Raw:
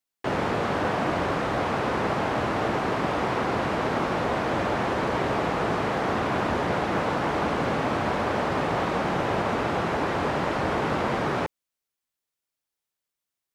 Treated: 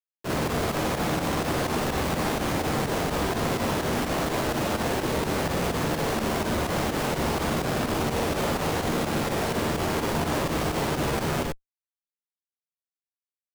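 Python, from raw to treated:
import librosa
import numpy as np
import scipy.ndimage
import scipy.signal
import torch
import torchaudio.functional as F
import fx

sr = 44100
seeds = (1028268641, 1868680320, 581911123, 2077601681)

y = fx.schmitt(x, sr, flips_db=-28.0)
y = fx.room_early_taps(y, sr, ms=(45, 58), db=(-3.5, -3.5))
y = fx.volume_shaper(y, sr, bpm=126, per_beat=2, depth_db=-9, release_ms=68.0, shape='fast start')
y = y * librosa.db_to_amplitude(-2.0)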